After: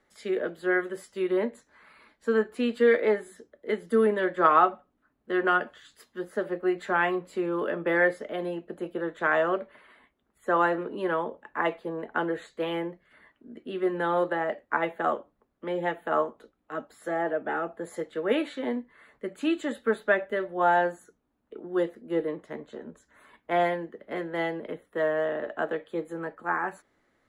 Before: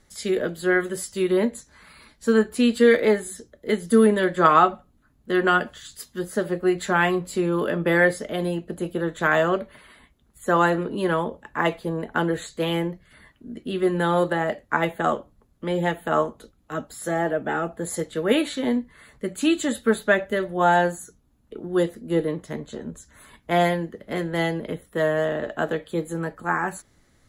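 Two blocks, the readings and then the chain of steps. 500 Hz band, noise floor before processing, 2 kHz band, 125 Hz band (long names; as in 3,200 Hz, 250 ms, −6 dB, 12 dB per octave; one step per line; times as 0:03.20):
−4.0 dB, −61 dBFS, −4.5 dB, −13.5 dB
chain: three-way crossover with the lows and the highs turned down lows −16 dB, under 250 Hz, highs −15 dB, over 2,900 Hz
level −3.5 dB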